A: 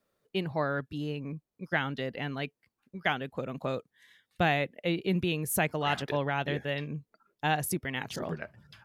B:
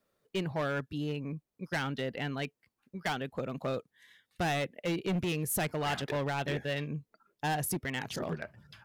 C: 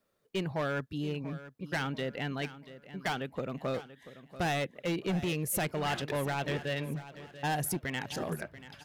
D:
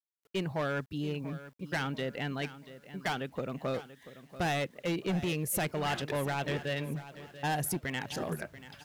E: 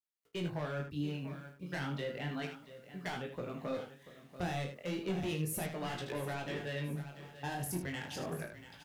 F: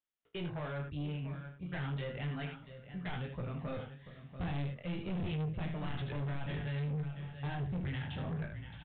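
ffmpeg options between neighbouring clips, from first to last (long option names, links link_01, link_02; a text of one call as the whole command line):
ffmpeg -i in.wav -af "volume=27.5dB,asoftclip=hard,volume=-27.5dB" out.wav
ffmpeg -i in.wav -af "aecho=1:1:686|1372|2058|2744:0.178|0.0694|0.027|0.0105" out.wav
ffmpeg -i in.wav -af "acrusher=bits=10:mix=0:aa=0.000001" out.wav
ffmpeg -i in.wav -filter_complex "[0:a]acrossover=split=310[link_01][link_02];[link_02]acompressor=threshold=-33dB:ratio=6[link_03];[link_01][link_03]amix=inputs=2:normalize=0,flanger=delay=16.5:depth=6:speed=0.33,asplit=2[link_04][link_05];[link_05]aecho=0:1:34|78:0.355|0.376[link_06];[link_04][link_06]amix=inputs=2:normalize=0,volume=-1.5dB" out.wav
ffmpeg -i in.wav -af "asubboost=boost=9:cutoff=120,aresample=8000,asoftclip=type=tanh:threshold=-34dB,aresample=44100,volume=1dB" out.wav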